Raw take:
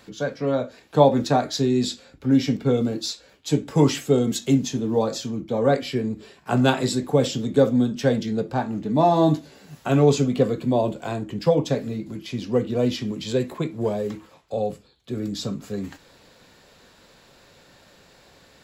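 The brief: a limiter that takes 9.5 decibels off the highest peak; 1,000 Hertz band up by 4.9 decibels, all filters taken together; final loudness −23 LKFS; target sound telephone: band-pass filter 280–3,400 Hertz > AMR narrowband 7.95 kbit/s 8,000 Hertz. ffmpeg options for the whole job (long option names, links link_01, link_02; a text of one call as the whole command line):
ffmpeg -i in.wav -af "equalizer=frequency=1000:width_type=o:gain=7,alimiter=limit=-9.5dB:level=0:latency=1,highpass=280,lowpass=3400,volume=2.5dB" -ar 8000 -c:a libopencore_amrnb -b:a 7950 out.amr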